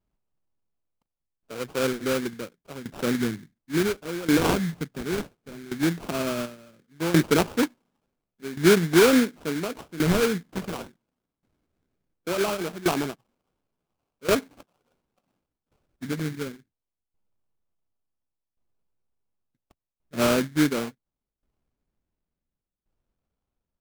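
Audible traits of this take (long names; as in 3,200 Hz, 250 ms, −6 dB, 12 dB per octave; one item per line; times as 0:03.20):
phaser sweep stages 4, 0.16 Hz, lowest notch 630–3,500 Hz
aliases and images of a low sample rate 1,900 Hz, jitter 20%
tremolo saw down 0.7 Hz, depth 85%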